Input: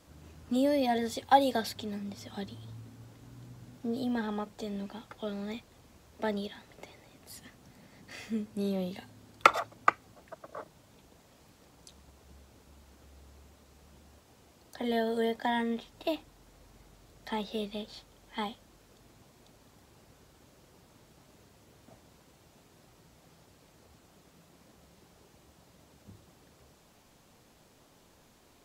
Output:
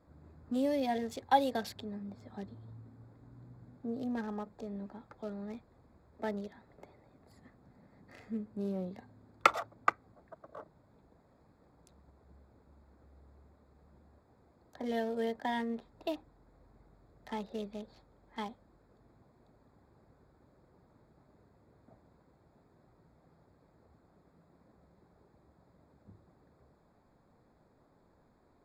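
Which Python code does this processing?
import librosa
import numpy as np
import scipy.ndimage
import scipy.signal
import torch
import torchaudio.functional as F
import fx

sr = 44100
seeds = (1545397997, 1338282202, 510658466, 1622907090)

y = fx.wiener(x, sr, points=15)
y = F.gain(torch.from_numpy(y), -4.0).numpy()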